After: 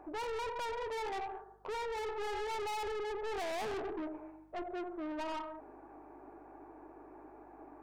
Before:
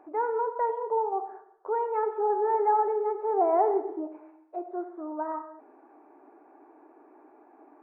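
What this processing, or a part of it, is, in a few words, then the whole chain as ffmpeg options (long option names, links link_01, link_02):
valve amplifier with mains hum: -af "aeval=exprs='(tanh(89.1*val(0)+0.25)-tanh(0.25))/89.1':channel_layout=same,aeval=exprs='val(0)+0.000316*(sin(2*PI*50*n/s)+sin(2*PI*2*50*n/s)/2+sin(2*PI*3*50*n/s)/3+sin(2*PI*4*50*n/s)/4+sin(2*PI*5*50*n/s)/5)':channel_layout=same,volume=2dB"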